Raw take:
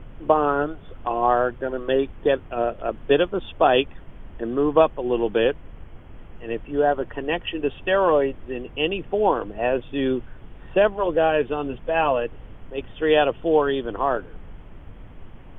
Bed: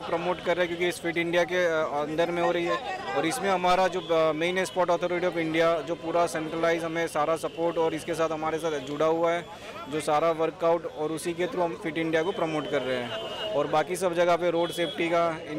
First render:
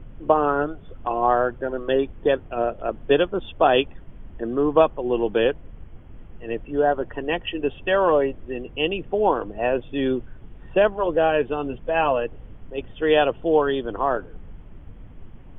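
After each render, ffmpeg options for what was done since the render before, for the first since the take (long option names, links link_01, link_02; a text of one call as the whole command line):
ffmpeg -i in.wav -af "afftdn=noise_reduction=6:noise_floor=-43" out.wav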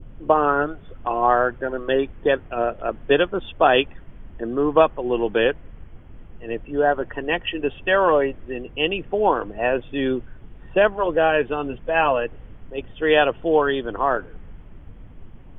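ffmpeg -i in.wav -af "adynamicequalizer=threshold=0.0178:dfrequency=1800:dqfactor=0.97:tfrequency=1800:tqfactor=0.97:attack=5:release=100:ratio=0.375:range=3:mode=boostabove:tftype=bell" out.wav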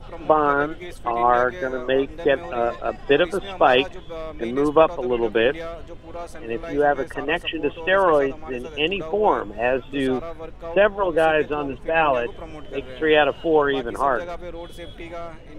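ffmpeg -i in.wav -i bed.wav -filter_complex "[1:a]volume=-10dB[link_01];[0:a][link_01]amix=inputs=2:normalize=0" out.wav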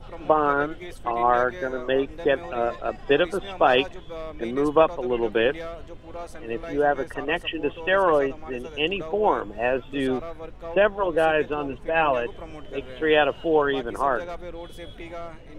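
ffmpeg -i in.wav -af "volume=-2.5dB" out.wav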